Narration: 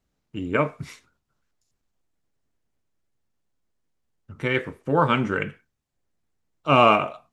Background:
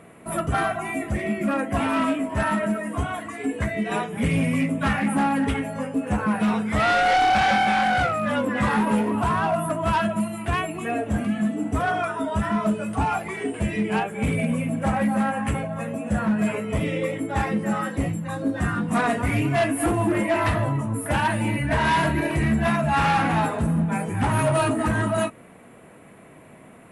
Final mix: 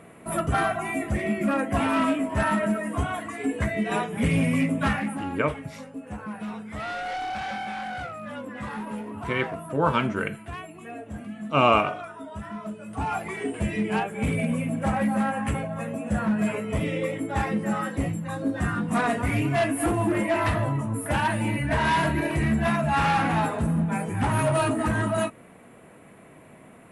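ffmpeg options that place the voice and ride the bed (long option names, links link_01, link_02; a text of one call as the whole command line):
ffmpeg -i stem1.wav -i stem2.wav -filter_complex "[0:a]adelay=4850,volume=-3dB[link_01];[1:a]volume=10dB,afade=type=out:start_time=4.83:duration=0.38:silence=0.251189,afade=type=in:start_time=12.82:duration=0.41:silence=0.298538[link_02];[link_01][link_02]amix=inputs=2:normalize=0" out.wav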